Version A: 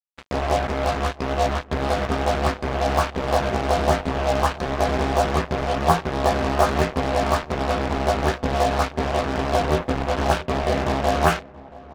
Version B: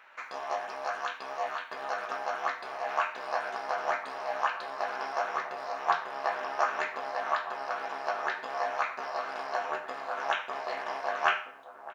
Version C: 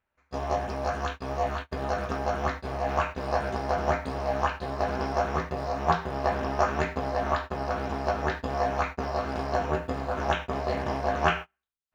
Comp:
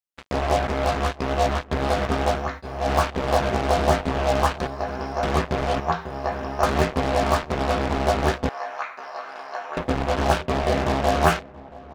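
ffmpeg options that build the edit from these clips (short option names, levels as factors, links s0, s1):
-filter_complex "[2:a]asplit=3[s0][s1][s2];[0:a]asplit=5[s3][s4][s5][s6][s7];[s3]atrim=end=2.45[s8];[s0]atrim=start=2.29:end=2.91[s9];[s4]atrim=start=2.75:end=4.672[s10];[s1]atrim=start=4.668:end=5.232[s11];[s5]atrim=start=5.228:end=5.802[s12];[s2]atrim=start=5.798:end=6.632[s13];[s6]atrim=start=6.628:end=8.492[s14];[1:a]atrim=start=8.488:end=9.772[s15];[s7]atrim=start=9.768[s16];[s8][s9]acrossfade=d=0.16:c1=tri:c2=tri[s17];[s17][s10]acrossfade=d=0.16:c1=tri:c2=tri[s18];[s18][s11]acrossfade=d=0.004:c1=hsin:c2=hsin[s19];[s19][s12]acrossfade=d=0.004:c1=hsin:c2=hsin[s20];[s20][s13]acrossfade=d=0.004:c1=hsin:c2=hsin[s21];[s21][s14]acrossfade=d=0.004:c1=hsin:c2=hsin[s22];[s22][s15]acrossfade=d=0.004:c1=hsin:c2=hsin[s23];[s23][s16]acrossfade=d=0.004:c1=hsin:c2=hsin"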